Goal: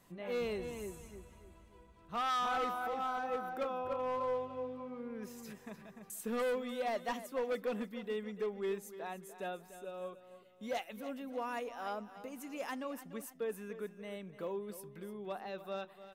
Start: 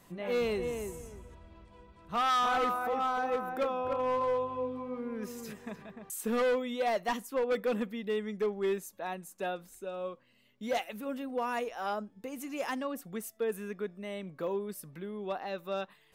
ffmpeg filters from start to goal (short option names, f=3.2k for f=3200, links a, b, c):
-af "aecho=1:1:294|588|882|1176:0.211|0.0909|0.0391|0.0168,volume=-6dB"